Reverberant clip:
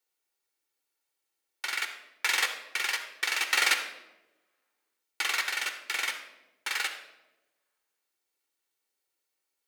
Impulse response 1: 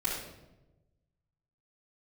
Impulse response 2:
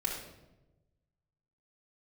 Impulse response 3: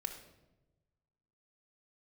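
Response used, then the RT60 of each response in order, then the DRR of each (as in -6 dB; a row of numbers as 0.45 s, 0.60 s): 3; 1.0 s, 1.0 s, 1.1 s; -10.5 dB, -3.5 dB, 4.0 dB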